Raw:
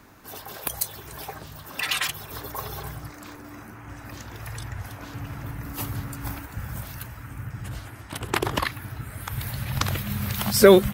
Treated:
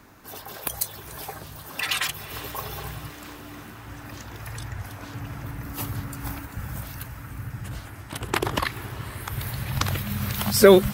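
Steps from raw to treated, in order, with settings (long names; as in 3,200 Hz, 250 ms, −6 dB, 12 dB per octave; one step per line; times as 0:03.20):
feedback delay with all-pass diffusion 458 ms, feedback 64%, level −15 dB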